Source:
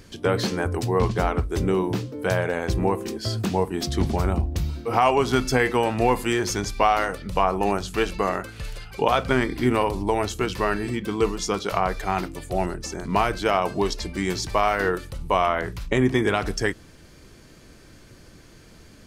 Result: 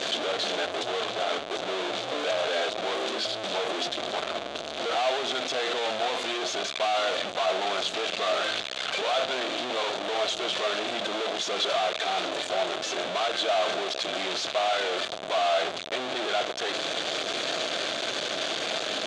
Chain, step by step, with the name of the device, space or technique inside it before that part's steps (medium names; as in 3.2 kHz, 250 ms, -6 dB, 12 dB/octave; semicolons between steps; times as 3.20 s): home computer beeper (one-bit comparator; cabinet simulation 510–6000 Hz, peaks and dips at 650 Hz +9 dB, 940 Hz -6 dB, 1.9 kHz -4 dB, 3.5 kHz +8 dB, 5.3 kHz -7 dB); trim -2 dB